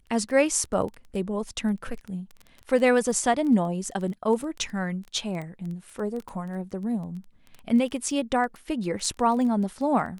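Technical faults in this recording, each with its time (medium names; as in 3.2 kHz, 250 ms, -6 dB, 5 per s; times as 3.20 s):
crackle 13 per s -31 dBFS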